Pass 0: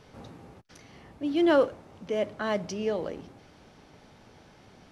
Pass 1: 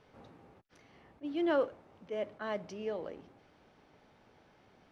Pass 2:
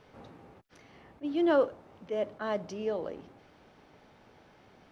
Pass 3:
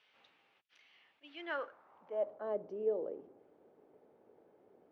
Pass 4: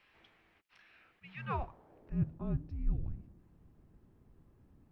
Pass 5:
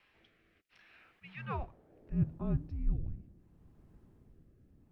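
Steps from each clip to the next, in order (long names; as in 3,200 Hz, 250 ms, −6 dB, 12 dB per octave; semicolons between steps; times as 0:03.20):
bass and treble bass −5 dB, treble −9 dB; level that may rise only so fast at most 500 dB per second; level −7.5 dB
dynamic equaliser 2,200 Hz, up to −5 dB, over −57 dBFS, Q 1.6; level +5 dB
band-pass filter sweep 2,900 Hz → 430 Hz, 0:01.22–0:02.60
frequency shifter −470 Hz; level +3 dB
rotating-speaker cabinet horn 0.7 Hz; level +2.5 dB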